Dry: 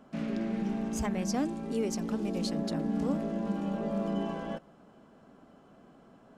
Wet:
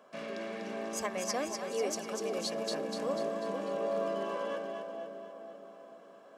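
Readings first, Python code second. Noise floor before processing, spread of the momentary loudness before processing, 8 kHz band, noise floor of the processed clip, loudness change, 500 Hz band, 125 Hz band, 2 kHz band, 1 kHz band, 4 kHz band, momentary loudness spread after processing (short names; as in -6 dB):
-58 dBFS, 4 LU, +3.0 dB, -55 dBFS, -3.0 dB, +3.0 dB, -14.0 dB, +3.5 dB, +2.0 dB, +3.5 dB, 15 LU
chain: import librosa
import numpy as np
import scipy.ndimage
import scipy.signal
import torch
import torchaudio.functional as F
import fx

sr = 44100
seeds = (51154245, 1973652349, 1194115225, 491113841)

y = scipy.signal.sosfilt(scipy.signal.butter(2, 430.0, 'highpass', fs=sr, output='sos'), x)
y = y + 0.48 * np.pad(y, (int(1.8 * sr / 1000.0), 0))[:len(y)]
y = fx.echo_split(y, sr, split_hz=850.0, low_ms=471, high_ms=246, feedback_pct=52, wet_db=-5)
y = F.gain(torch.from_numpy(y), 1.0).numpy()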